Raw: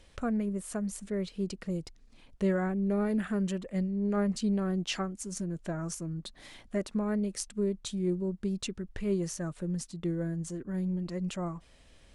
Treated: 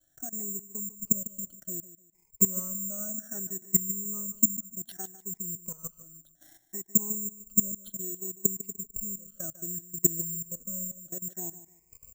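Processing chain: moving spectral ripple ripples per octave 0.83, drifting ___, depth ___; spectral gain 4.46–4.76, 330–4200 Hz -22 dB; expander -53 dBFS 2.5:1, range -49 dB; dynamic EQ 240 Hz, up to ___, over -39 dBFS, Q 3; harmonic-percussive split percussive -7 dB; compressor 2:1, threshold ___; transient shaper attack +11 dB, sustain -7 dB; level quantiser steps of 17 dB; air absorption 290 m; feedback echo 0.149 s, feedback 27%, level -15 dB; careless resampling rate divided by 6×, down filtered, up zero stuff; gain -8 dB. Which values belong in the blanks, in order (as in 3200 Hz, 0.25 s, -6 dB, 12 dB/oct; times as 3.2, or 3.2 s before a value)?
+0.63 Hz, 23 dB, +7 dB, -30 dBFS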